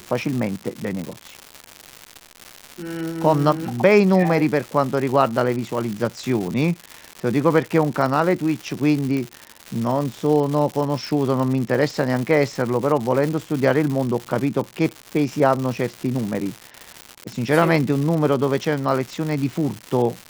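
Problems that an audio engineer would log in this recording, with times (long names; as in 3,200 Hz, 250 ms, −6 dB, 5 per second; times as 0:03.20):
surface crackle 240 per second −25 dBFS
0:09.17: click −15 dBFS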